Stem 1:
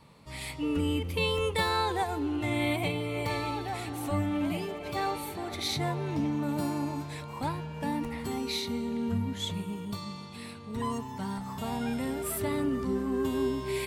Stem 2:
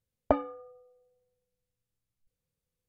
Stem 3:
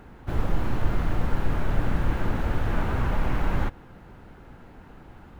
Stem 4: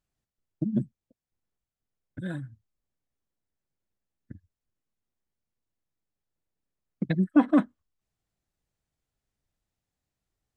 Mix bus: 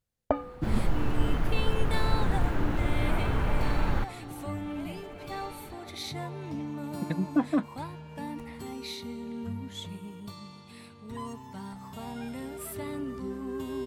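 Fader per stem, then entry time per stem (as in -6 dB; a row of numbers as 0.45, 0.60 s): -6.0, -2.0, -2.5, -5.5 dB; 0.35, 0.00, 0.35, 0.00 s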